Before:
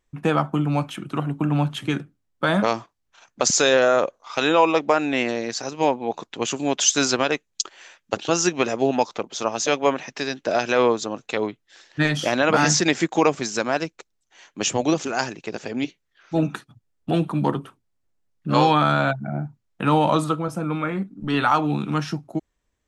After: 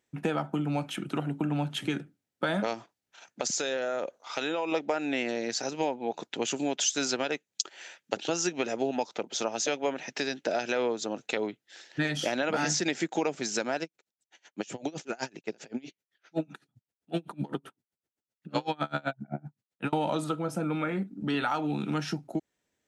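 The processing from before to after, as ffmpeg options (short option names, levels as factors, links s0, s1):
-filter_complex "[0:a]asettb=1/sr,asplit=3[s0][s1][s2];[s0]atrim=end=2.744[s3];[s1]atrim=start=2.74:end=4.72,asetpts=PTS-STARTPTS,afade=t=in:d=0.004:c=qsin,afade=t=out:st=1.976:d=0.004:c=qsin,acompressor=threshold=0.0355:ratio=2:attack=3.2:release=140:knee=1:detection=peak[s4];[s2]atrim=start=4.716[s5];[s3][s4]acrossfade=d=0.004:c1=hsin:c2=qsin[s6];[s6][s5]acrossfade=d=0.004:c1=qsin:c2=hsin,asettb=1/sr,asplit=3[s7][s8][s9];[s7]atrim=end=13.834[s10];[s8]atrim=start=13.83:end=19.93,asetpts=PTS-STARTPTS,afade=t=in:d=0.004:c=qsin,afade=t=out:st=6.096:d=0.004:c=qsin,aeval=exprs='val(0)*pow(10,-32*(0.5-0.5*cos(2*PI*7.8*n/s))/20)':c=same[s11];[s9]atrim=start=19.926[s12];[s10][s11]acrossfade=d=0.004:c1=hsin:c2=qsin[s13];[s13][s12]acrossfade=d=0.004:c1=qsin:c2=hsin,highpass=160,equalizer=f=1100:t=o:w=0.21:g=-12,acompressor=threshold=0.0398:ratio=3"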